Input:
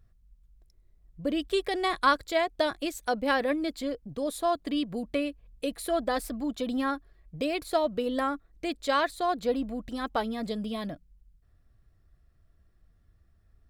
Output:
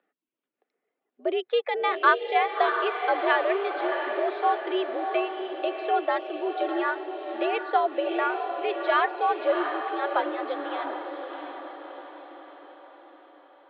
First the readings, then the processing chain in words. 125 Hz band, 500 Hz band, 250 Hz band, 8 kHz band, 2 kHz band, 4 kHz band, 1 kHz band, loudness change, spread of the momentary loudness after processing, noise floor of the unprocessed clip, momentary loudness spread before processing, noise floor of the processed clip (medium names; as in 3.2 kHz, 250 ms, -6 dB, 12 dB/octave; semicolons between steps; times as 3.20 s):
under -30 dB, +3.5 dB, -3.0 dB, under -35 dB, +5.5 dB, -1.0 dB, +6.0 dB, +3.5 dB, 14 LU, -64 dBFS, 9 LU, -85 dBFS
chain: reverb removal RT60 0.67 s; echo that smears into a reverb 686 ms, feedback 51%, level -6 dB; mistuned SSB +82 Hz 260–3100 Hz; trim +3.5 dB